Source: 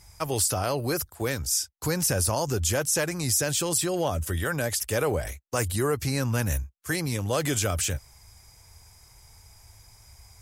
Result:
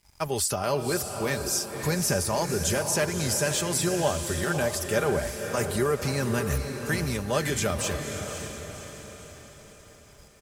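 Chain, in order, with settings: treble shelf 6.7 kHz -6 dB; comb 5 ms, depth 48%; in parallel at 0 dB: volume shaper 108 bpm, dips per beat 2, -9 dB, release 205 ms; on the sum: crossover distortion -48 dBFS; on a send: echo that smears into a reverb 556 ms, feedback 49%, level -6.5 dB; on the sum: trim -5.5 dB

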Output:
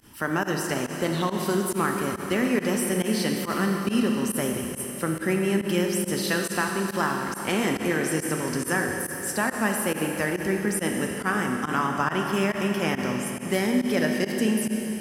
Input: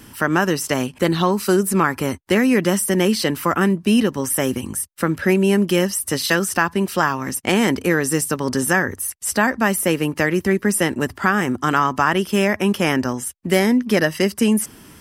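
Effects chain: Schroeder reverb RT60 3.6 s, combs from 25 ms, DRR 1.5 dB; volume shaper 139 bpm, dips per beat 1, -21 dB, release 70 ms; trim -8.5 dB

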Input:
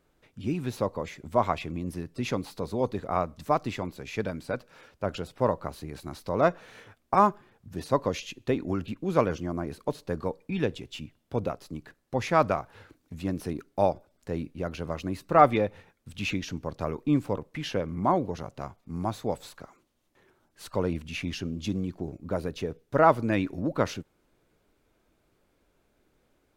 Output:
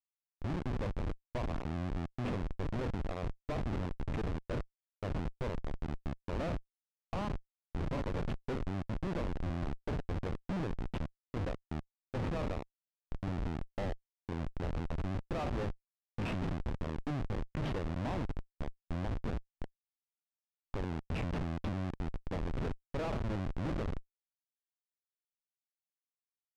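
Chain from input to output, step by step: spectral sustain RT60 0.44 s; dynamic bell 1.6 kHz, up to -4 dB, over -43 dBFS, Q 3.2; compression 5:1, threshold -28 dBFS, peak gain reduction 15 dB; Schmitt trigger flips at -31 dBFS; tape spacing loss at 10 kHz 21 dB; trim +1.5 dB

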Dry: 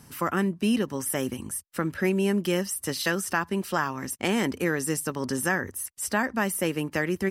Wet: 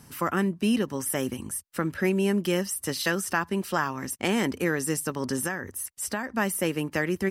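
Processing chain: 5.44–6.36 s: compression 4:1, threshold -27 dBFS, peak gain reduction 7.5 dB

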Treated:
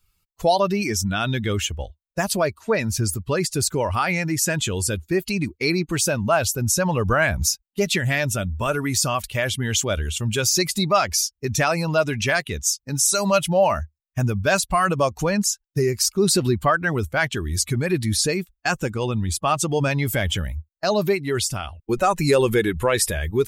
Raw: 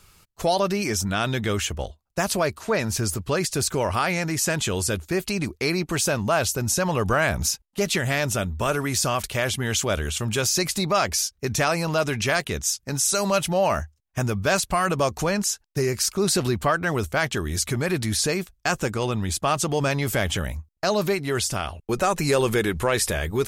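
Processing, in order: expander on every frequency bin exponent 1.5; trim +5.5 dB

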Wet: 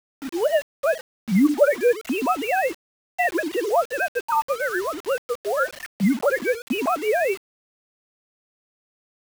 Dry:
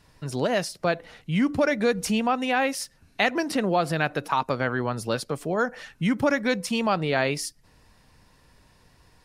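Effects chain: formants replaced by sine waves; spectral gate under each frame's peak -25 dB strong; in parallel at +1 dB: compression 10:1, threshold -31 dBFS, peak gain reduction 18.5 dB; on the sum: word length cut 6-bit, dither none

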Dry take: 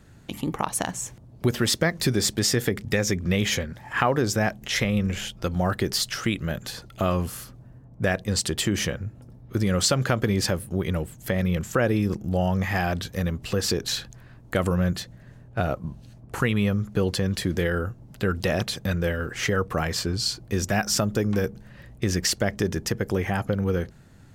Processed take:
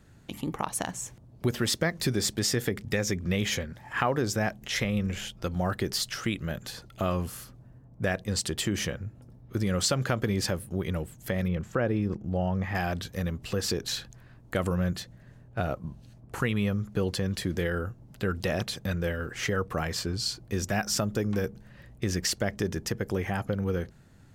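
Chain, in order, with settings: 11.48–12.75 s: low-pass 1.8 kHz 6 dB/octave; trim -4.5 dB

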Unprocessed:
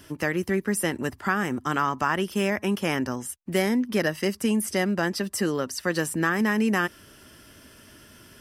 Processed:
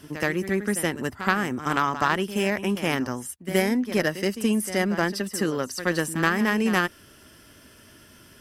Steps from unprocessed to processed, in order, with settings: Chebyshev shaper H 3 -16 dB, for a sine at -9.5 dBFS; reverse echo 74 ms -12 dB; trim +4.5 dB

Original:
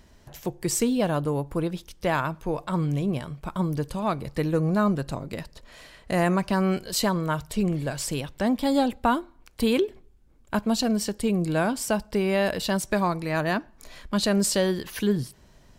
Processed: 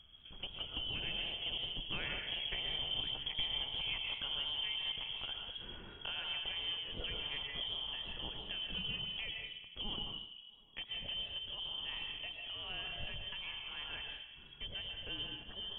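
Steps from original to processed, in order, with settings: rattle on loud lows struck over -31 dBFS, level -30 dBFS; Doppler pass-by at 3.28 s, 23 m/s, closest 24 m; bass shelf 270 Hz +9 dB; compression 5:1, threshold -35 dBFS, peak gain reduction 16.5 dB; on a send: repeats whose band climbs or falls 108 ms, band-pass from 160 Hz, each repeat 0.7 oct, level -8 dB; on the sum: algorithmic reverb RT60 0.9 s, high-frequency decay 0.55×, pre-delay 90 ms, DRR 2 dB; frequency inversion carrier 3.3 kHz; tilt EQ -4.5 dB/octave; modulated delay 81 ms, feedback 51%, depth 162 cents, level -22.5 dB; trim +1 dB

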